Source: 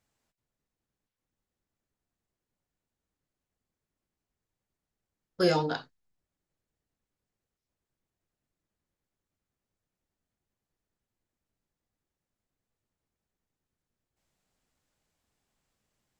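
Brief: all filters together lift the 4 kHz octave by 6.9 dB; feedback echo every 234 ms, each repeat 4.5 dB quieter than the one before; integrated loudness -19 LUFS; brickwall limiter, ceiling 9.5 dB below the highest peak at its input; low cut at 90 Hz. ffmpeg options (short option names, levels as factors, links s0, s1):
-af "highpass=90,equalizer=f=4000:t=o:g=9,alimiter=limit=0.0944:level=0:latency=1,aecho=1:1:234|468|702|936|1170|1404|1638|1872|2106:0.596|0.357|0.214|0.129|0.0772|0.0463|0.0278|0.0167|0.01,volume=5.96"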